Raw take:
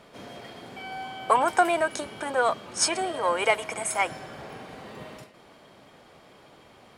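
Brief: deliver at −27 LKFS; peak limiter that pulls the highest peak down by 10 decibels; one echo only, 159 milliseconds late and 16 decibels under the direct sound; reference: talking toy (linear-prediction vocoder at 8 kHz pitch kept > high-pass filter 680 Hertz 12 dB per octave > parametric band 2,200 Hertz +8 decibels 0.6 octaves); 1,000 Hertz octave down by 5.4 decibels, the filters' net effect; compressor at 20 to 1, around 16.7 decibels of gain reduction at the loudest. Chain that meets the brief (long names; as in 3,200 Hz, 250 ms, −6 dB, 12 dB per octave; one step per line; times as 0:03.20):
parametric band 1,000 Hz −6 dB
downward compressor 20 to 1, threshold −35 dBFS
brickwall limiter −32.5 dBFS
single-tap delay 159 ms −16 dB
linear-prediction vocoder at 8 kHz pitch kept
high-pass filter 680 Hz 12 dB per octave
parametric band 2,200 Hz +8 dB 0.6 octaves
level +15 dB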